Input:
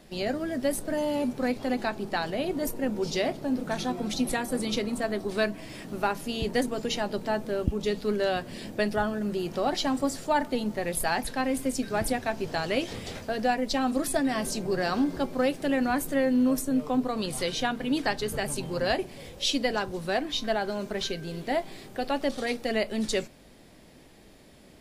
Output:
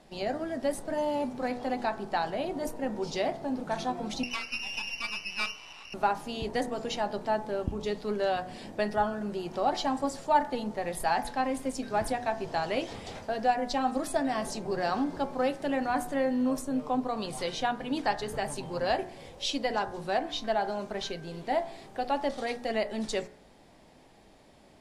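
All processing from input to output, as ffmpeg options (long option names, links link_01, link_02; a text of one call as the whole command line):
ffmpeg -i in.wav -filter_complex "[0:a]asettb=1/sr,asplit=3[link_01][link_02][link_03];[link_01]atrim=end=4.234[link_04];[link_02]atrim=start=4.23:end=5.94,asetpts=PTS-STARTPTS,afade=type=in:duration=0.004:curve=qsin,afade=type=out:start_time=1.706:duration=0.004:curve=qsin,lowpass=frequency=2600:width_type=q:width=0.5098,lowpass=frequency=2600:width_type=q:width=0.6013,lowpass=frequency=2600:width_type=q:width=0.9,lowpass=frequency=2600:width_type=q:width=2.563,afreqshift=-3000,aeval=exprs='max(val(0),0)':channel_layout=same,tiltshelf=frequency=970:gain=-4[link_05];[link_03]atrim=start=5.936[link_06];[link_04][link_05]acrossfade=duration=0.004:curve1=hsin:curve2=qsin[link_07];[link_07][link_06]acrossfade=duration=0.004:curve1=qsin:curve2=hsin,lowpass=9600,equalizer=frequency=840:width=1.5:gain=8.5,bandreject=frequency=61.02:width_type=h:width=4,bandreject=frequency=122.04:width_type=h:width=4,bandreject=frequency=183.06:width_type=h:width=4,bandreject=frequency=244.08:width_type=h:width=4,bandreject=frequency=305.1:width_type=h:width=4,bandreject=frequency=366.12:width_type=h:width=4,bandreject=frequency=427.14:width_type=h:width=4,bandreject=frequency=488.16:width_type=h:width=4,bandreject=frequency=549.18:width_type=h:width=4,bandreject=frequency=610.2:width_type=h:width=4,bandreject=frequency=671.22:width_type=h:width=4,bandreject=frequency=732.24:width_type=h:width=4,bandreject=frequency=793.26:width_type=h:width=4,bandreject=frequency=854.28:width_type=h:width=4,bandreject=frequency=915.3:width_type=h:width=4,bandreject=frequency=976.32:width_type=h:width=4,bandreject=frequency=1037.34:width_type=h:width=4,bandreject=frequency=1098.36:width_type=h:width=4,bandreject=frequency=1159.38:width_type=h:width=4,bandreject=frequency=1220.4:width_type=h:width=4,bandreject=frequency=1281.42:width_type=h:width=4,bandreject=frequency=1342.44:width_type=h:width=4,bandreject=frequency=1403.46:width_type=h:width=4,bandreject=frequency=1464.48:width_type=h:width=4,bandreject=frequency=1525.5:width_type=h:width=4,bandreject=frequency=1586.52:width_type=h:width=4,bandreject=frequency=1647.54:width_type=h:width=4,bandreject=frequency=1708.56:width_type=h:width=4,bandreject=frequency=1769.58:width_type=h:width=4,bandreject=frequency=1830.6:width_type=h:width=4,bandreject=frequency=1891.62:width_type=h:width=4,bandreject=frequency=1952.64:width_type=h:width=4,bandreject=frequency=2013.66:width_type=h:width=4,bandreject=frequency=2074.68:width_type=h:width=4,volume=-5dB" out.wav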